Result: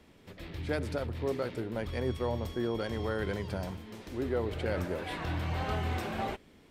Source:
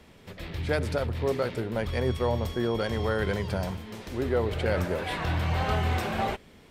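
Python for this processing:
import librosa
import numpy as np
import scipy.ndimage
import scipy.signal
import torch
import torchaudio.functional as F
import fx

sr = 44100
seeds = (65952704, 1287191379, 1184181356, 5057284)

y = fx.peak_eq(x, sr, hz=300.0, db=5.5, octaves=0.53)
y = y * librosa.db_to_amplitude(-6.5)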